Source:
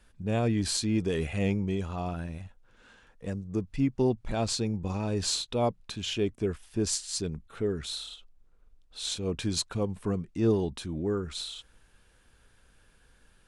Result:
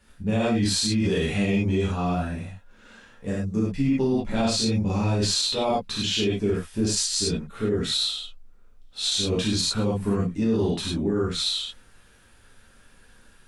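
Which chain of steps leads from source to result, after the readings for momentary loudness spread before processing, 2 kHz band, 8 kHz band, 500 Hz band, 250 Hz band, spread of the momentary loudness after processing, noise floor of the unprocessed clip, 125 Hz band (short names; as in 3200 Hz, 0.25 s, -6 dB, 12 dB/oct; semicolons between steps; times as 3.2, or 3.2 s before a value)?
11 LU, +7.5 dB, +6.0 dB, +4.5 dB, +6.0 dB, 6 LU, -62 dBFS, +5.0 dB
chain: dynamic EQ 3900 Hz, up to +5 dB, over -49 dBFS, Q 1.2; non-linear reverb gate 0.13 s flat, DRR -7.5 dB; limiter -15 dBFS, peak gain reduction 9.5 dB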